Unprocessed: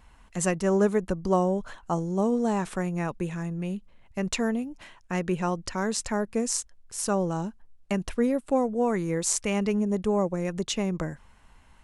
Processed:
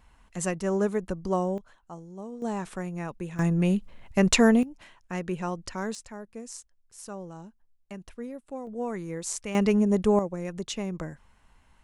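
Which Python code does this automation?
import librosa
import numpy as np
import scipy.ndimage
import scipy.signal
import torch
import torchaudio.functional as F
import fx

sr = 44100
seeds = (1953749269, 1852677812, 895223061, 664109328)

y = fx.gain(x, sr, db=fx.steps((0.0, -3.5), (1.58, -15.0), (2.42, -5.0), (3.39, 8.0), (4.63, -4.0), (5.95, -13.5), (8.67, -7.0), (9.55, 3.5), (10.19, -4.5)))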